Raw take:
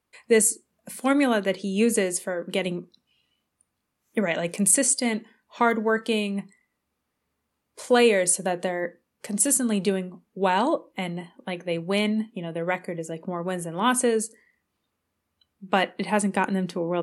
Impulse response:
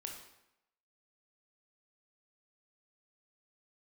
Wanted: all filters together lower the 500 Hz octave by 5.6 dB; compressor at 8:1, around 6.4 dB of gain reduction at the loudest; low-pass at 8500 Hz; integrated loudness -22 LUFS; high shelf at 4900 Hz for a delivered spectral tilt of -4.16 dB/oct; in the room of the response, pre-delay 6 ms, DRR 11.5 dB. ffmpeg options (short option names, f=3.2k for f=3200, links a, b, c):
-filter_complex "[0:a]lowpass=8.5k,equalizer=f=500:t=o:g=-6.5,highshelf=f=4.9k:g=-4,acompressor=threshold=-24dB:ratio=8,asplit=2[a][b];[1:a]atrim=start_sample=2205,adelay=6[c];[b][c]afir=irnorm=-1:irlink=0,volume=-9dB[d];[a][d]amix=inputs=2:normalize=0,volume=9dB"